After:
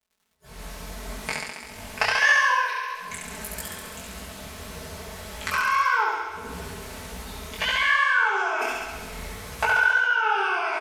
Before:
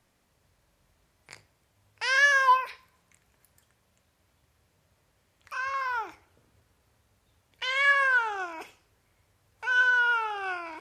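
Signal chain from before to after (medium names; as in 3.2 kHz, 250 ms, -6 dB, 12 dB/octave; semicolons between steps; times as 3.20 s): recorder AGC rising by 48 dB/s; on a send: flutter echo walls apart 11.7 m, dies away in 1.5 s; on the sum: vibrato 1.4 Hz 17 cents; spectral noise reduction 23 dB; crackle 92 per s -50 dBFS; comb 4.6 ms, depth 82%; detune thickener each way 58 cents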